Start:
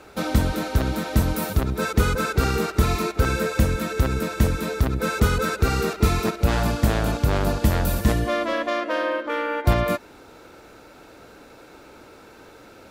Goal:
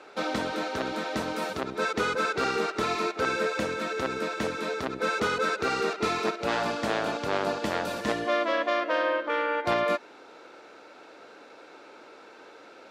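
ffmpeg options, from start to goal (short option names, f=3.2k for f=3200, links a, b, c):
-af "highpass=360,lowpass=5.2k,volume=-1dB"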